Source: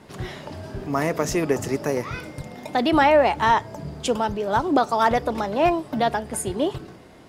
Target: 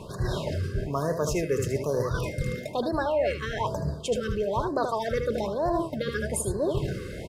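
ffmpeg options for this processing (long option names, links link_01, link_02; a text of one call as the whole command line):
ffmpeg -i in.wav -af "lowshelf=frequency=330:gain=5.5,aecho=1:1:1.9:0.54,aecho=1:1:78:0.398,areverse,acompressor=threshold=-33dB:ratio=5,areverse,afftfilt=real='re*(1-between(b*sr/1024,770*pow(2800/770,0.5+0.5*sin(2*PI*1.1*pts/sr))/1.41,770*pow(2800/770,0.5+0.5*sin(2*PI*1.1*pts/sr))*1.41))':imag='im*(1-between(b*sr/1024,770*pow(2800/770,0.5+0.5*sin(2*PI*1.1*pts/sr))/1.41,770*pow(2800/770,0.5+0.5*sin(2*PI*1.1*pts/sr))*1.41))':win_size=1024:overlap=0.75,volume=7.5dB" out.wav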